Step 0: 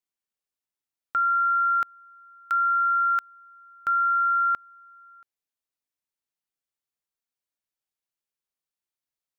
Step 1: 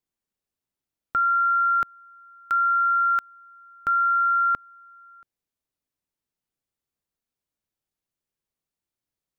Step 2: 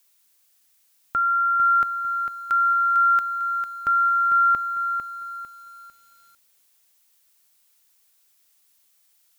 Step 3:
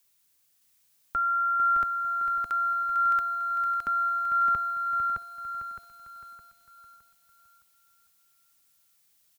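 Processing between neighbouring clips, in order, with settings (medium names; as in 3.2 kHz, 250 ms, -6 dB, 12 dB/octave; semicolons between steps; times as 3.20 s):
bass shelf 490 Hz +12 dB
added noise blue -63 dBFS; bit-crushed delay 450 ms, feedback 35%, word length 9-bit, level -7.5 dB
octave divider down 1 oct, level -2 dB; feedback delay 614 ms, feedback 38%, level -4 dB; trim -5 dB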